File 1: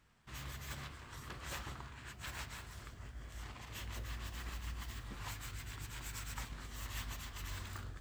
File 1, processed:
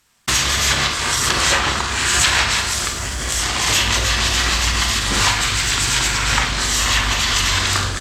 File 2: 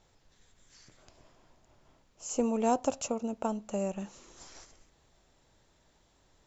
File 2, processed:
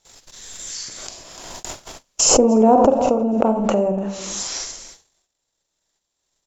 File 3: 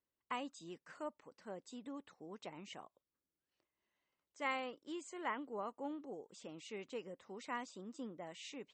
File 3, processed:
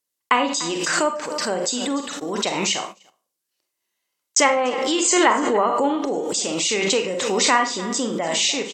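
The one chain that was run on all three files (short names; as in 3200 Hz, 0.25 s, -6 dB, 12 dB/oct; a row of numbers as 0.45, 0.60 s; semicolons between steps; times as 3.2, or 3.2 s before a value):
tone controls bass -6 dB, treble +8 dB; treble ducked by the level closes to 710 Hz, closed at -33.5 dBFS; high shelf 2500 Hz +7 dB; echo 0.294 s -16 dB; Schroeder reverb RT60 0.36 s, combs from 32 ms, DRR 5.5 dB; gate -56 dBFS, range -60 dB; backwards sustainer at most 27 dB/s; normalise peaks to -1.5 dBFS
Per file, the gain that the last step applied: +26.0, +15.5, +22.5 dB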